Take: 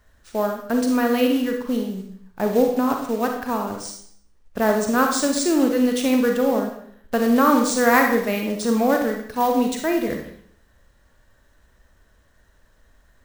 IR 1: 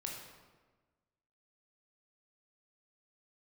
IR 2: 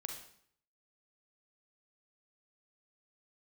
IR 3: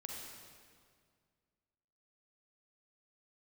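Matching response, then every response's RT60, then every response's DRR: 2; 1.3, 0.60, 2.0 seconds; −1.0, 2.5, −1.5 decibels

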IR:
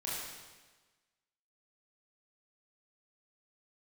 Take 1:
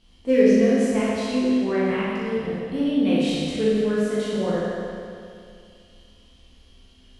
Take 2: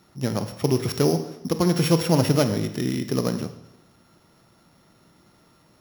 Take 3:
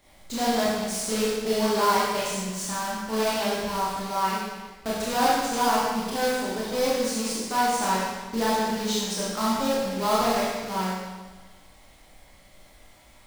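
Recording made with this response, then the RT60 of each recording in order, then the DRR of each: 3; 2.4, 0.90, 1.3 seconds; −9.5, 8.5, −7.5 decibels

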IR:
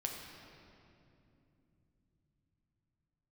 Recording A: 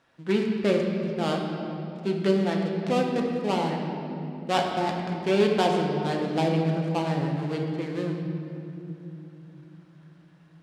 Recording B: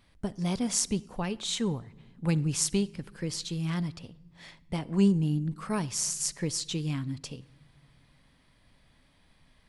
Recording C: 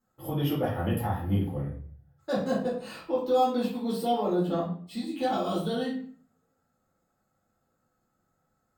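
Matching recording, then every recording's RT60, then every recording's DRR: A; 2.9 s, non-exponential decay, 0.50 s; 0.5, 17.0, −7.5 decibels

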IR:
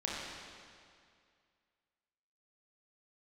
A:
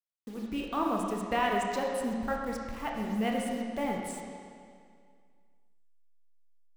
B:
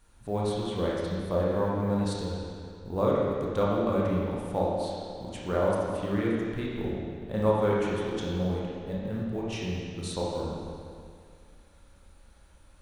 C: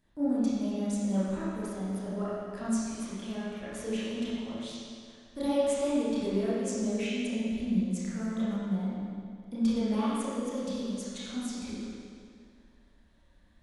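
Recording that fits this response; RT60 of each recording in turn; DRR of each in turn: B; 2.2, 2.2, 2.2 seconds; −1.0, −5.5, −10.5 decibels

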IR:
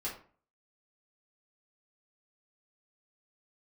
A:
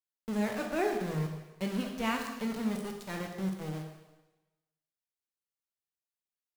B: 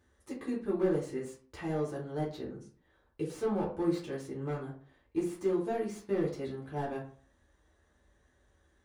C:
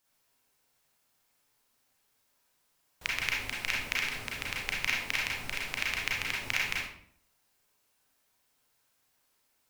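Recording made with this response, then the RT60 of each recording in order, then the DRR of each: B; 1.1, 0.45, 0.60 seconds; 2.0, −7.0, −4.5 decibels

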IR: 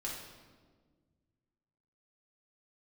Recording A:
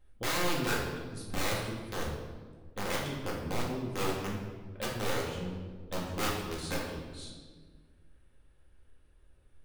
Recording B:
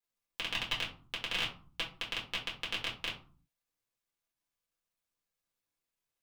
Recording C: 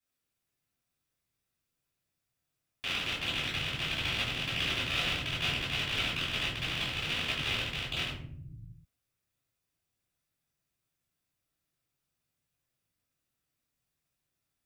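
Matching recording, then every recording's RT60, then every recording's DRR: A; 1.5 s, 0.40 s, non-exponential decay; −4.5, −4.5, −11.0 decibels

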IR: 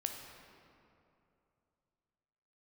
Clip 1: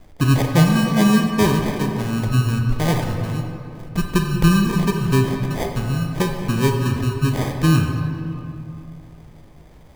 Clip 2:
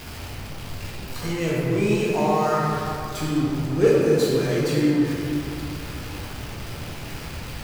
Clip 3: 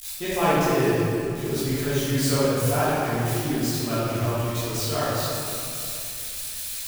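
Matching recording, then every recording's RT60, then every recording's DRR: 1; 2.7, 2.7, 2.7 seconds; 3.0, −6.0, −13.5 decibels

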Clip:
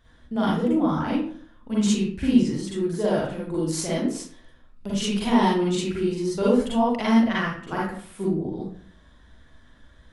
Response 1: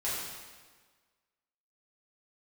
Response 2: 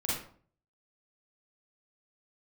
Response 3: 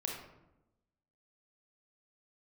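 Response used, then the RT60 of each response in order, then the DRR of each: 2; 1.5, 0.50, 0.90 seconds; −10.0, −7.0, −1.0 decibels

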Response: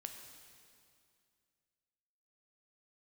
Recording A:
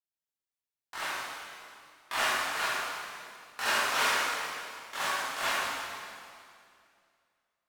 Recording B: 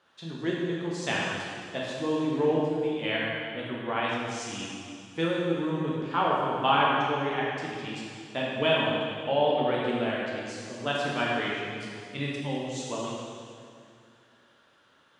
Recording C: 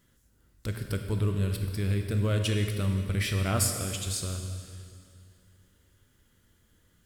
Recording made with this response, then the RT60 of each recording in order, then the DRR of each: C; 2.3, 2.3, 2.3 seconds; −12.0, −5.0, 4.0 decibels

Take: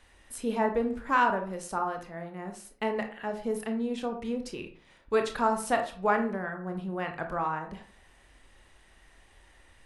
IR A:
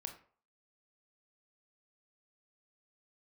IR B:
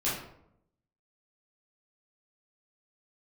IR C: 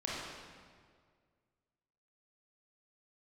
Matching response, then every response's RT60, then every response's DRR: A; 0.45, 0.75, 1.9 seconds; 4.5, −9.5, −6.5 decibels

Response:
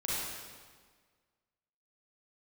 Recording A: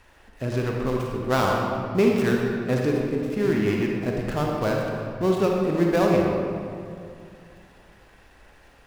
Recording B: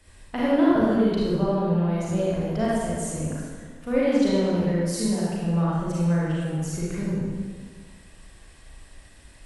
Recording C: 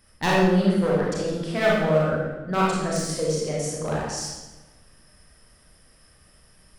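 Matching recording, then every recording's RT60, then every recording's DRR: B; 2.4, 1.6, 1.2 seconds; −1.0, −8.0, −5.5 decibels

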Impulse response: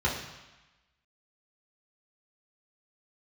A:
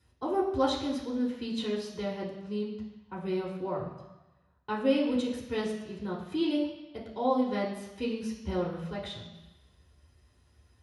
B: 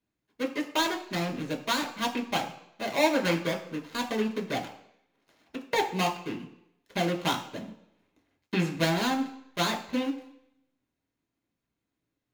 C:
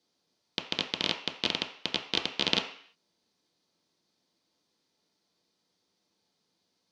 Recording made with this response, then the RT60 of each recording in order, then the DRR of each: A; 1.1 s, non-exponential decay, 0.55 s; −5.0, 0.5, 1.5 decibels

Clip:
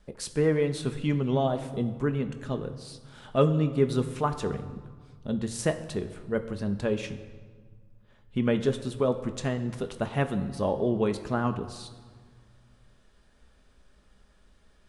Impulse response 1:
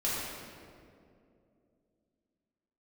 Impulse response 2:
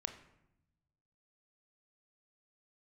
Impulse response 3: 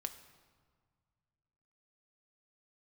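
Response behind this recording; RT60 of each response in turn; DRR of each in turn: 3; 2.5, 0.85, 1.7 seconds; −8.0, 7.0, 7.0 decibels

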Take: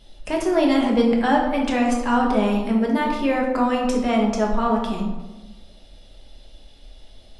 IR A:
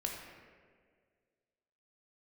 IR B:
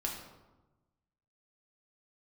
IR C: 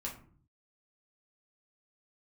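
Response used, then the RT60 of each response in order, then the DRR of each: B; 1.9, 1.1, 0.50 seconds; −0.5, −1.5, −3.0 decibels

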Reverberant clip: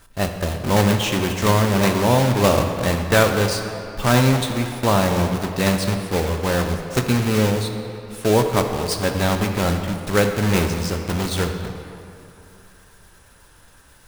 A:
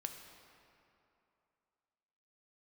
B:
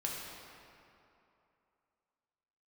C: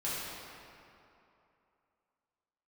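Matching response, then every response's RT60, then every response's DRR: A; 2.8, 2.8, 2.8 seconds; 4.5, −3.0, −10.0 decibels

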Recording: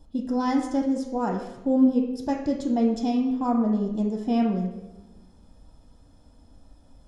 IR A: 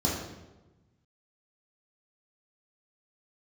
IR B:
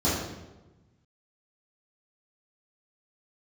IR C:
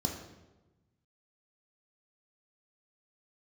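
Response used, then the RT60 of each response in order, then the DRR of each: C; 1.1, 1.1, 1.1 seconds; −5.0, −11.0, 1.0 decibels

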